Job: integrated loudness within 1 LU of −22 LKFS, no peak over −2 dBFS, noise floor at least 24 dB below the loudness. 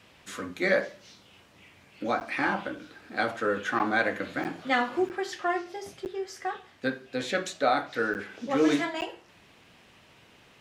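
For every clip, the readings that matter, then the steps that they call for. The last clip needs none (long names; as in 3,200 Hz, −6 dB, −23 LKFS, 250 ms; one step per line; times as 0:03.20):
number of dropouts 7; longest dropout 9.4 ms; integrated loudness −29.5 LKFS; sample peak −10.5 dBFS; target loudness −22.0 LKFS
→ repair the gap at 0:02.20/0:03.79/0:04.44/0:05.09/0:06.05/0:08.14/0:09.01, 9.4 ms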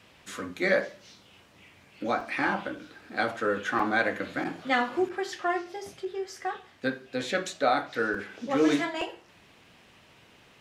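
number of dropouts 0; integrated loudness −29.5 LKFS; sample peak −10.5 dBFS; target loudness −22.0 LKFS
→ level +7.5 dB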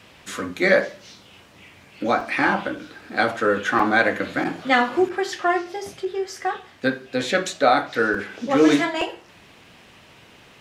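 integrated loudness −22.0 LKFS; sample peak −3.0 dBFS; background noise floor −50 dBFS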